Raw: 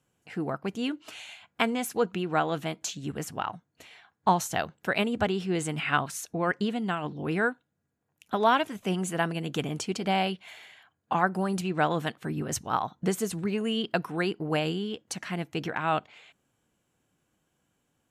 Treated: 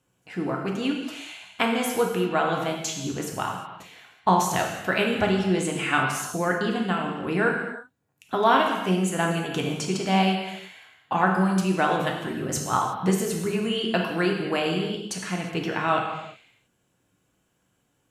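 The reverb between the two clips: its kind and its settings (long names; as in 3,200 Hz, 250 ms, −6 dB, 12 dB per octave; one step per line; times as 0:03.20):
reverb whose tail is shaped and stops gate 390 ms falling, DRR 0 dB
level +1.5 dB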